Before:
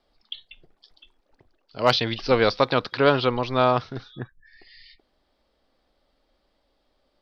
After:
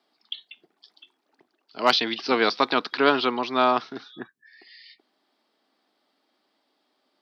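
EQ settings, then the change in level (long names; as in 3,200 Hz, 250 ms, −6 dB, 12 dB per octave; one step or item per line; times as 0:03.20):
high-pass filter 230 Hz 24 dB per octave
parametric band 530 Hz −11 dB 0.34 octaves
+1.5 dB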